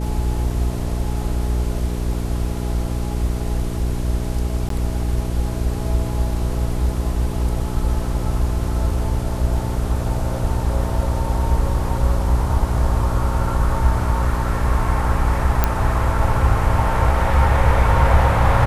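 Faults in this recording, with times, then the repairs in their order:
mains hum 60 Hz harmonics 7 −23 dBFS
0:04.69–0:04.70: drop-out 13 ms
0:15.64: click −2 dBFS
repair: click removal
hum removal 60 Hz, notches 7
repair the gap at 0:04.69, 13 ms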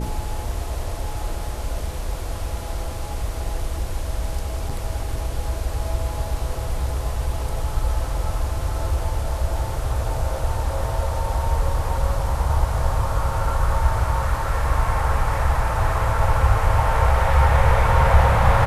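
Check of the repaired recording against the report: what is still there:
none of them is left

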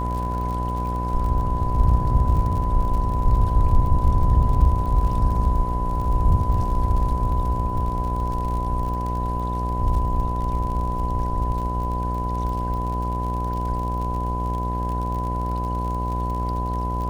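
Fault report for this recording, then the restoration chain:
mains buzz 60 Hz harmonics 18 −26 dBFS
surface crackle 48 per second −30 dBFS
whistle 1,000 Hz −27 dBFS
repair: click removal
notch filter 1,000 Hz, Q 30
hum removal 60 Hz, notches 18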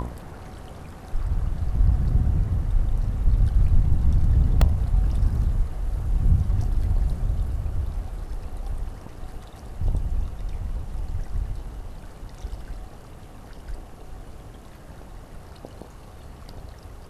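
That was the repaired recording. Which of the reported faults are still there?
none of them is left

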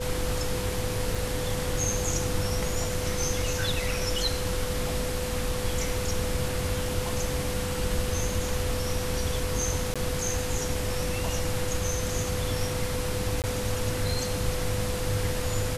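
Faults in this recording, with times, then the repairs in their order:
whistle 500 Hz −33 dBFS
0:01.15: drop-out 3.5 ms
0:09.94–0:09.96: drop-out 16 ms
0:13.42–0:13.44: drop-out 18 ms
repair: notch filter 500 Hz, Q 30
repair the gap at 0:01.15, 3.5 ms
repair the gap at 0:09.94, 16 ms
repair the gap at 0:13.42, 18 ms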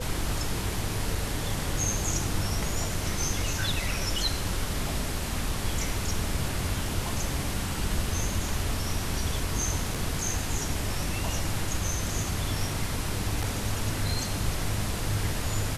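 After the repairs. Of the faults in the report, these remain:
none of them is left

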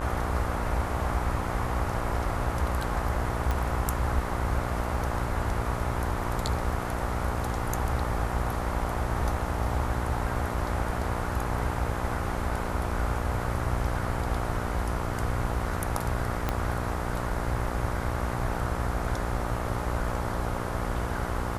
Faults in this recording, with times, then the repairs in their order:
mains buzz 60 Hz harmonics 24 −33 dBFS
0:03.51: click
0:16.49: click −13 dBFS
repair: click removal
hum removal 60 Hz, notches 24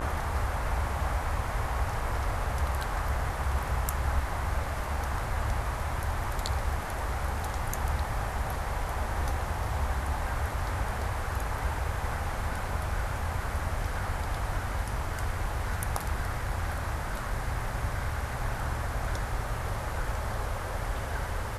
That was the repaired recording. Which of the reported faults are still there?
0:16.49: click

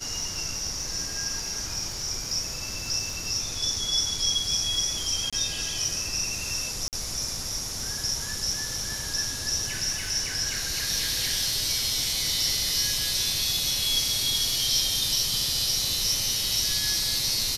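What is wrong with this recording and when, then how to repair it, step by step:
surface crackle 58 per second −35 dBFS
0:05.30–0:05.33: drop-out 26 ms
0:06.88–0:06.93: drop-out 48 ms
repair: click removal
repair the gap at 0:05.30, 26 ms
repair the gap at 0:06.88, 48 ms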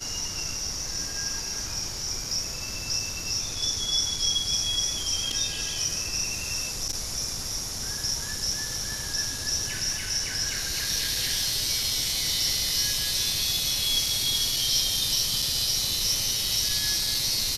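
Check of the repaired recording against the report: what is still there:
none of them is left

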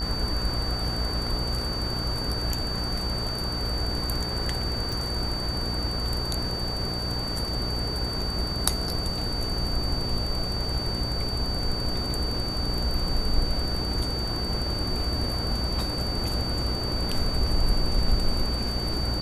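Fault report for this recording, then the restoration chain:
mains buzz 60 Hz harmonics 25 −32 dBFS
whistle 4,600 Hz −31 dBFS
0:04.92: click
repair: click removal
hum removal 60 Hz, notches 25
notch filter 4,600 Hz, Q 30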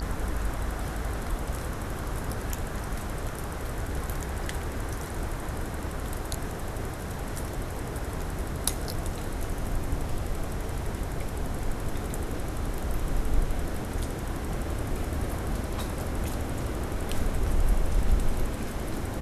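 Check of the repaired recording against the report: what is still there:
none of them is left

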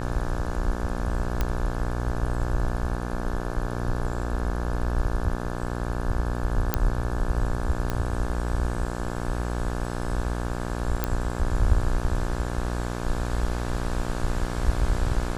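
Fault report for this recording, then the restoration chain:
mains buzz 60 Hz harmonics 29 −30 dBFS
0:01.41: click −11 dBFS
0:06.74: click −6 dBFS
0:07.90: click −13 dBFS
0:11.04: click −10 dBFS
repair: click removal
hum removal 60 Hz, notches 29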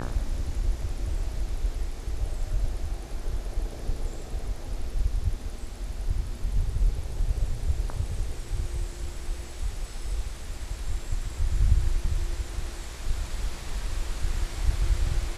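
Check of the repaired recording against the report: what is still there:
none of them is left

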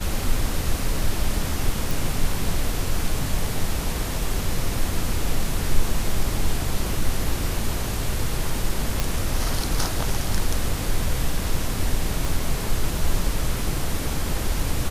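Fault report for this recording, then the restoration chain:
0:01.91: click
0:09.00: click
0:12.25: click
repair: click removal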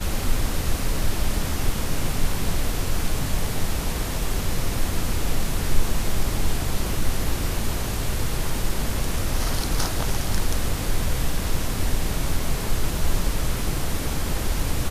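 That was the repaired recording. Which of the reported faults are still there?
0:12.25: click

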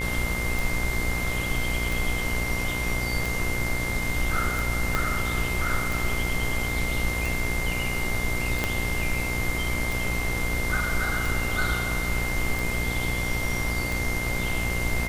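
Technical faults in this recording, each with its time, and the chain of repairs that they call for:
mains buzz 60 Hz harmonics 38 −31 dBFS
scratch tick 45 rpm
whistle 2,100 Hz −30 dBFS
0:04.95: click −10 dBFS
0:08.64: click −9 dBFS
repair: click removal
hum removal 60 Hz, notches 38
notch filter 2,100 Hz, Q 30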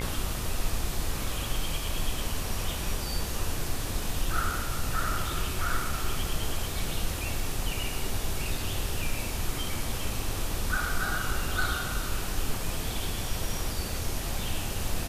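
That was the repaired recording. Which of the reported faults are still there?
0:04.95: click
0:08.64: click

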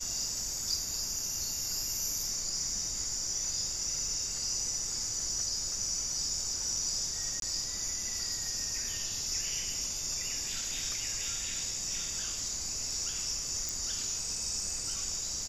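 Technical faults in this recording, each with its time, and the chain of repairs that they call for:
0:07.40–0:07.42: drop-out 22 ms
0:13.69: click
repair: click removal
repair the gap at 0:07.40, 22 ms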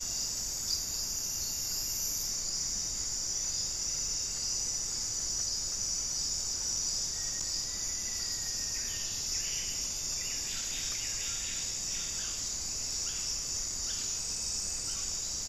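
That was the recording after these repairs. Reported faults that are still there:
0:13.69: click

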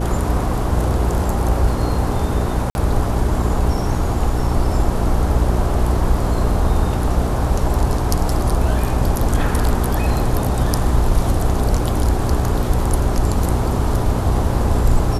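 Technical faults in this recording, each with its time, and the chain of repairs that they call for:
mains hum 60 Hz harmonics 7 −22 dBFS
0:02.70–0:02.75: drop-out 51 ms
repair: hum removal 60 Hz, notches 7
repair the gap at 0:02.70, 51 ms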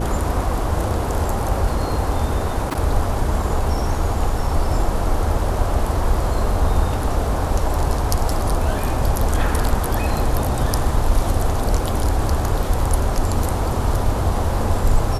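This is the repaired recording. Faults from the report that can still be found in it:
none of them is left

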